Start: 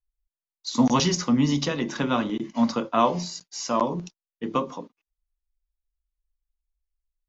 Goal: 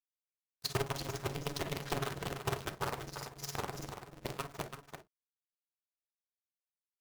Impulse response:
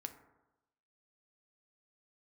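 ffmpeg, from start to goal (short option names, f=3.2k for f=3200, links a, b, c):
-filter_complex "[0:a]lowpass=6.5k,acompressor=threshold=-31dB:ratio=10,tremolo=f=19:d=0.97,acrusher=bits=6:dc=4:mix=0:aa=0.000001,asetrate=45864,aresample=44100,aecho=1:1:336:0.398[a];[1:a]atrim=start_sample=2205,atrim=end_sample=3087[b];[a][b]afir=irnorm=-1:irlink=0,aeval=exprs='val(0)*sgn(sin(2*PI*140*n/s))':c=same,volume=3.5dB"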